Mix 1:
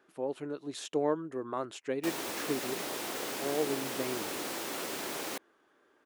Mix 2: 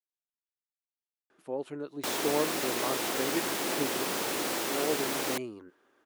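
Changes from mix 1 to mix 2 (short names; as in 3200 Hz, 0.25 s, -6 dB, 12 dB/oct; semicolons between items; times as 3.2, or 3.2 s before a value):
speech: entry +1.30 s; background +5.5 dB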